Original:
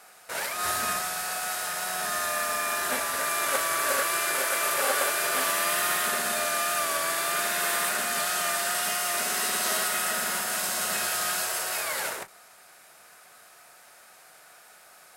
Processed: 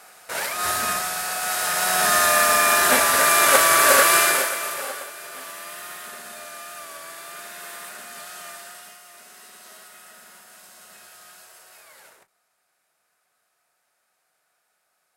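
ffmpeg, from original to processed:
ffmpeg -i in.wav -af "volume=11dB,afade=type=in:start_time=1.37:duration=0.7:silence=0.446684,afade=type=out:start_time=4.18:duration=0.35:silence=0.281838,afade=type=out:start_time=4.53:duration=0.54:silence=0.281838,afade=type=out:start_time=8.49:duration=0.52:silence=0.398107" out.wav

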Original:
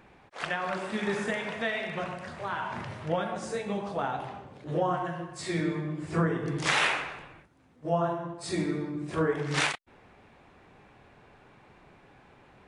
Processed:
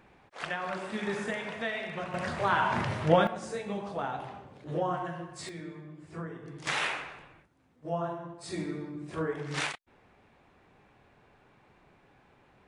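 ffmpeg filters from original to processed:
ffmpeg -i in.wav -af "asetnsamples=nb_out_samples=441:pad=0,asendcmd='2.14 volume volume 7dB;3.27 volume volume -3dB;5.49 volume volume -13dB;6.67 volume volume -5.5dB',volume=-3dB" out.wav

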